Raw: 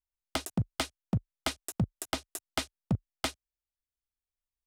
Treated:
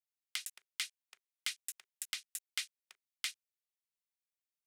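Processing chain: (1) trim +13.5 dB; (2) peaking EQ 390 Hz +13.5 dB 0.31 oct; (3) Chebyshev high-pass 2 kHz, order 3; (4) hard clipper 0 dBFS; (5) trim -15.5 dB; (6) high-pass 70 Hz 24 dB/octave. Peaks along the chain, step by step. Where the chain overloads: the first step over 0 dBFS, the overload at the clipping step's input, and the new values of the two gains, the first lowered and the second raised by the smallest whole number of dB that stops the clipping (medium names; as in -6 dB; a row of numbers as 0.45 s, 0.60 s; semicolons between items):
-8.0 dBFS, -2.0 dBFS, -3.5 dBFS, -3.5 dBFS, -19.0 dBFS, -19.0 dBFS; nothing clips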